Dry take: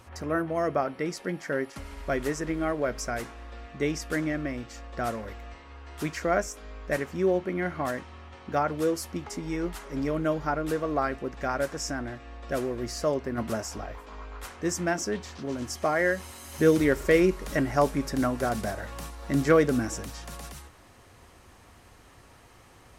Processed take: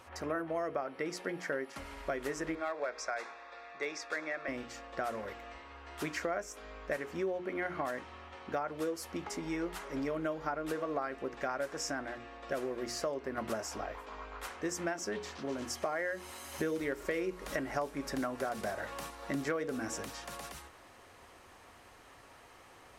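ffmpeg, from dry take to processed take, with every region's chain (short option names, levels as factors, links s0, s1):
-filter_complex "[0:a]asettb=1/sr,asplit=3[s0][s1][s2];[s0]atrim=end=2.554[s3];[s1]atrim=start=2.55:end=4.48,asetpts=PTS-STARTPTS,afade=t=in:d=0.004:c=qsin,afade=t=out:st=1.926:d=0.004:c=qsin,acrossover=split=460 7000:gain=0.112 1 0.0631[s4][s5][s6];[s4][s5][s6]amix=inputs=3:normalize=0,asoftclip=type=hard:threshold=0.0668,asuperstop=centerf=3000:order=4:qfactor=5.9[s7];[s2]atrim=start=4.476[s8];[s3][s7]acrossfade=d=0.004:c1=hsin:c2=qsin[s9];[s9][s8]acrossfade=d=0.004:c1=qsin:c2=hsin,bass=f=250:g=-10,treble=f=4000:g=-4,bandreject=f=60:t=h:w=6,bandreject=f=120:t=h:w=6,bandreject=f=180:t=h:w=6,bandreject=f=240:t=h:w=6,bandreject=f=300:t=h:w=6,bandreject=f=360:t=h:w=6,bandreject=f=420:t=h:w=6,bandreject=f=480:t=h:w=6,acompressor=threshold=0.0251:ratio=6"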